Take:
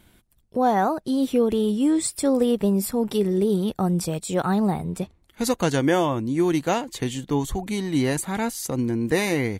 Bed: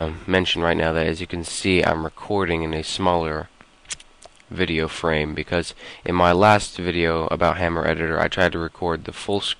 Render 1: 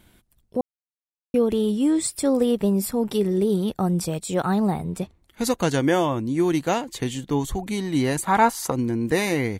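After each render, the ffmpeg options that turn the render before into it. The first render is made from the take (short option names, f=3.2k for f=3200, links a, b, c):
-filter_complex "[0:a]asettb=1/sr,asplit=3[a][b][c];[a]atrim=end=8.274[d];[b]atrim=start=8.27:end=8.72,asetpts=PTS-STARTPTS,afade=t=in:d=0.004:c=qsin,afade=t=out:st=0.446:d=0.004:c=qsin,equalizer=f=1k:w=0.88:g=15[e];[c]atrim=start=8.716[f];[d][e]acrossfade=d=0.004:c1=hsin:c2=qsin[g];[g][f]acrossfade=d=0.004:c1=qsin:c2=hsin,asplit=3[h][i][j];[h]atrim=end=0.61,asetpts=PTS-STARTPTS,afade=t=out:st=0.606:d=0.004:c=hsin[k];[i]atrim=start=0.61:end=1.34,asetpts=PTS-STARTPTS,volume=0[l];[j]atrim=start=1.34,asetpts=PTS-STARTPTS,afade=t=in:d=0.004:c=hsin[m];[k][l][m]concat=n=3:v=0:a=1"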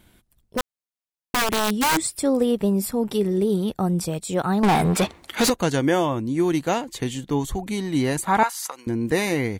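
-filter_complex "[0:a]asplit=3[a][b][c];[a]afade=t=out:st=0.57:d=0.02[d];[b]aeval=exprs='(mod(6.31*val(0)+1,2)-1)/6.31':c=same,afade=t=in:st=0.57:d=0.02,afade=t=out:st=2:d=0.02[e];[c]afade=t=in:st=2:d=0.02[f];[d][e][f]amix=inputs=3:normalize=0,asettb=1/sr,asplit=3[g][h][i];[g]atrim=end=4.634[j];[h]atrim=start=4.63:end=5.5,asetpts=PTS-STARTPTS,afade=t=in:d=0.004:c=qsin,afade=t=out:st=0.866:d=0.004:c=qsin,asplit=2[k][l];[l]highpass=f=720:p=1,volume=31dB,asoftclip=type=tanh:threshold=-10.5dB[m];[k][m]amix=inputs=2:normalize=0,lowpass=f=5.1k:p=1,volume=-6dB[n];[i]atrim=start=5.496[o];[j][n]acrossfade=d=0.004:c1=hsin:c2=qsin[p];[p][o]acrossfade=d=0.004:c1=qsin:c2=hsin,asettb=1/sr,asplit=3[q][r][s];[q]atrim=end=8.434[t];[r]atrim=start=8.43:end=8.87,asetpts=PTS-STARTPTS,afade=t=in:d=0.004:c=qsin,afade=t=out:st=0.436:d=0.004:c=qsin,highpass=1.2k[u];[s]atrim=start=8.866[v];[t][u]acrossfade=d=0.004:c1=hsin:c2=qsin[w];[w][v]acrossfade=d=0.004:c1=qsin:c2=hsin"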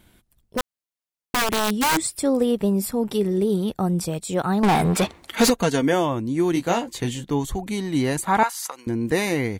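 -filter_complex "[0:a]asettb=1/sr,asplit=3[a][b][c];[a]atrim=end=5.334[d];[b]atrim=start=5.33:end=5.93,asetpts=PTS-STARTPTS,afade=t=in:d=0.004:c=qsin,afade=t=out:st=0.596:d=0.004:c=qsin,aecho=1:1:4.4:0.54,atrim=end_sample=26460[e];[c]atrim=start=5.926[f];[d][e]acrossfade=d=0.004:c1=hsin:c2=qsin[g];[g][f]acrossfade=d=0.004:c1=qsin:c2=hsin,asettb=1/sr,asplit=3[h][i][j];[h]atrim=end=6.544[k];[i]atrim=start=6.54:end=7.24,asetpts=PTS-STARTPTS,afade=t=in:d=0.004:c=qsin,afade=t=out:st=0.696:d=0.004:c=qsin,asplit=2[l][m];[m]adelay=17,volume=-5.5dB[n];[l][n]amix=inputs=2:normalize=0,atrim=end_sample=30870[o];[j]atrim=start=7.236[p];[k][o]acrossfade=d=0.004:c1=hsin:c2=qsin[q];[q][p]acrossfade=d=0.004:c1=qsin:c2=hsin"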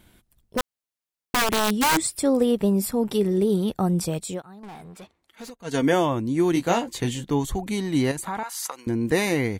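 -filter_complex "[0:a]asettb=1/sr,asplit=3[a][b][c];[a]atrim=end=8.114[d];[b]atrim=start=8.11:end=8.52,asetpts=PTS-STARTPTS,afade=t=in:d=0.004:c=qsin,afade=t=out:st=0.406:d=0.004:c=qsin,acompressor=threshold=-28dB:ratio=4:attack=3.2:release=140:knee=1:detection=peak[e];[c]atrim=start=8.516[f];[d][e]acrossfade=d=0.004:c1=hsin:c2=qsin[g];[g][f]acrossfade=d=0.004:c1=qsin:c2=hsin,asplit=3[h][i][j];[h]atrim=end=4.42,asetpts=PTS-STARTPTS,afade=t=out:st=4.18:d=0.24:c=qsin:silence=0.0707946[k];[i]atrim=start=4.42:end=5.64,asetpts=PTS-STARTPTS,volume=-23dB[l];[j]atrim=start=5.64,asetpts=PTS-STARTPTS,afade=t=in:d=0.24:c=qsin:silence=0.0707946[m];[k][l][m]concat=n=3:v=0:a=1"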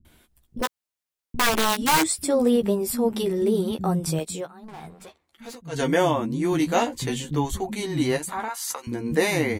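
-filter_complex "[0:a]asplit=2[a][b];[b]adelay=13,volume=-6dB[c];[a][c]amix=inputs=2:normalize=0,acrossover=split=220[d][e];[e]adelay=50[f];[d][f]amix=inputs=2:normalize=0"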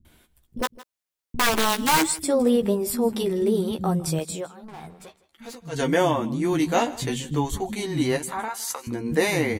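-af "aecho=1:1:160:0.106"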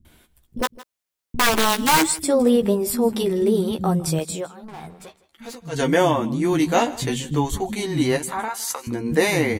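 -af "volume=3dB"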